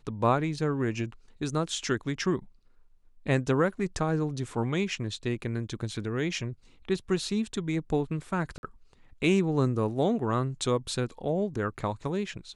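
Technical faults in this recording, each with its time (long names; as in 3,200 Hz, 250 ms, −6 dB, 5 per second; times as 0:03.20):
0:08.58–0:08.63: drop-out 51 ms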